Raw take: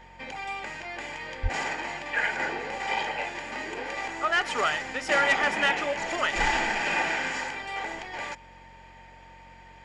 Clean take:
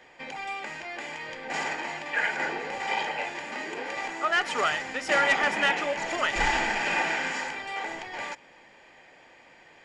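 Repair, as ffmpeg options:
-filter_complex "[0:a]bandreject=f=45.6:t=h:w=4,bandreject=f=91.2:t=h:w=4,bandreject=f=136.8:t=h:w=4,bandreject=f=182.4:t=h:w=4,bandreject=f=228:t=h:w=4,bandreject=f=910:w=30,asplit=3[s0][s1][s2];[s0]afade=t=out:st=1.42:d=0.02[s3];[s1]highpass=f=140:w=0.5412,highpass=f=140:w=1.3066,afade=t=in:st=1.42:d=0.02,afade=t=out:st=1.54:d=0.02[s4];[s2]afade=t=in:st=1.54:d=0.02[s5];[s3][s4][s5]amix=inputs=3:normalize=0"

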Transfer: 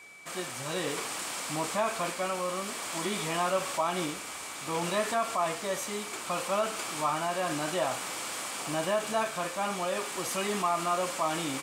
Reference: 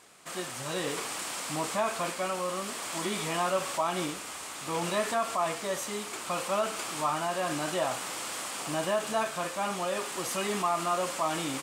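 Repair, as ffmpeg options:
-af "bandreject=f=2300:w=30"

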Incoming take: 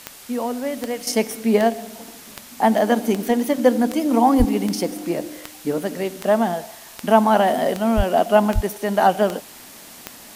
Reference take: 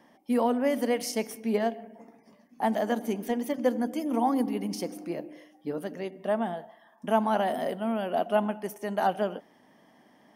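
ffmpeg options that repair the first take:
-filter_complex "[0:a]adeclick=t=4,asplit=3[s0][s1][s2];[s0]afade=t=out:st=4.38:d=0.02[s3];[s1]highpass=f=140:w=0.5412,highpass=f=140:w=1.3066,afade=t=in:st=4.38:d=0.02,afade=t=out:st=4.5:d=0.02[s4];[s2]afade=t=in:st=4.5:d=0.02[s5];[s3][s4][s5]amix=inputs=3:normalize=0,asplit=3[s6][s7][s8];[s6]afade=t=out:st=7.96:d=0.02[s9];[s7]highpass=f=140:w=0.5412,highpass=f=140:w=1.3066,afade=t=in:st=7.96:d=0.02,afade=t=out:st=8.08:d=0.02[s10];[s8]afade=t=in:st=8.08:d=0.02[s11];[s9][s10][s11]amix=inputs=3:normalize=0,asplit=3[s12][s13][s14];[s12]afade=t=out:st=8.54:d=0.02[s15];[s13]highpass=f=140:w=0.5412,highpass=f=140:w=1.3066,afade=t=in:st=8.54:d=0.02,afade=t=out:st=8.66:d=0.02[s16];[s14]afade=t=in:st=8.66:d=0.02[s17];[s15][s16][s17]amix=inputs=3:normalize=0,afwtdn=0.0089,asetnsamples=n=441:p=0,asendcmd='1.07 volume volume -10dB',volume=1"

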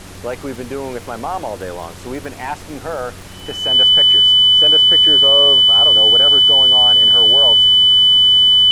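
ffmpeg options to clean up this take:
-af "adeclick=t=4,bandreject=f=92:t=h:w=4,bandreject=f=184:t=h:w=4,bandreject=f=276:t=h:w=4,bandreject=f=368:t=h:w=4,bandreject=f=3000:w=30,afftdn=nr=26:nf=-33"

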